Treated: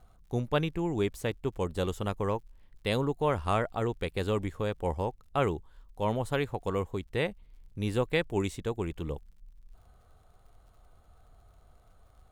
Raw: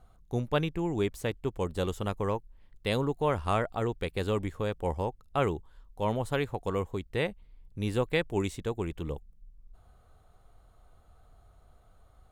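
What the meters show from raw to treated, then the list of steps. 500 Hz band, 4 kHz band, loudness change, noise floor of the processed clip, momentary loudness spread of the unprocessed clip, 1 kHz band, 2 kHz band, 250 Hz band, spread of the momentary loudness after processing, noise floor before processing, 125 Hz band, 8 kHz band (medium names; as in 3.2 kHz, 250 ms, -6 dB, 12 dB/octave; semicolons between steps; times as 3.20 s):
0.0 dB, 0.0 dB, 0.0 dB, -60 dBFS, 7 LU, 0.0 dB, 0.0 dB, 0.0 dB, 7 LU, -60 dBFS, 0.0 dB, 0.0 dB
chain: crackle 68 per s -57 dBFS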